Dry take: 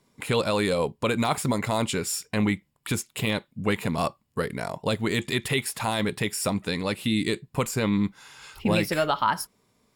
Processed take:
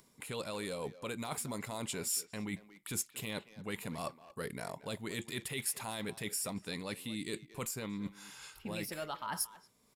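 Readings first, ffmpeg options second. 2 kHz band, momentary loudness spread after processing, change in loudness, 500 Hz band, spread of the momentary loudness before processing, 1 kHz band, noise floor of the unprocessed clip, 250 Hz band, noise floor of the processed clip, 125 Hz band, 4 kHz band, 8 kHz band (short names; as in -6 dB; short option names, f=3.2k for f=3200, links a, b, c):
-13.5 dB, 7 LU, -13.0 dB, -15.0 dB, 7 LU, -15.5 dB, -72 dBFS, -15.0 dB, -67 dBFS, -16.0 dB, -12.0 dB, -5.0 dB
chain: -filter_complex "[0:a]equalizer=f=92:w=3.9:g=-4,areverse,acompressor=threshold=-31dB:ratio=6,areverse,asplit=2[a][b];[b]adelay=230,highpass=300,lowpass=3.4k,asoftclip=type=hard:threshold=-30.5dB,volume=-14dB[c];[a][c]amix=inputs=2:normalize=0,acompressor=mode=upward:threshold=-56dB:ratio=2.5,aresample=32000,aresample=44100,highshelf=f=6.8k:g=11,volume=-6.5dB"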